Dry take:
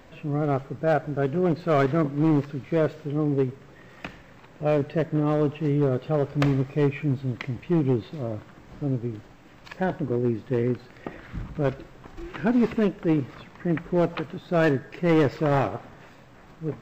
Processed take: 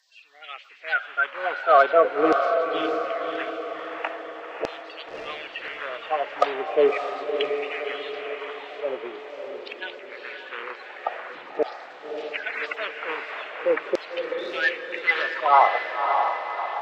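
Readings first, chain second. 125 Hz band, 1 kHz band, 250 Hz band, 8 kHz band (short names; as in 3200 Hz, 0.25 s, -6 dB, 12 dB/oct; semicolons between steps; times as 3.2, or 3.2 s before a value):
under -30 dB, +9.0 dB, -13.0 dB, n/a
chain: bin magnitudes rounded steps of 30 dB; three-band isolator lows -17 dB, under 420 Hz, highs -16 dB, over 4400 Hz; LFO high-pass saw down 0.43 Hz 390–5100 Hz; diffused feedback echo 0.592 s, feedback 53%, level -5 dB; gain +5.5 dB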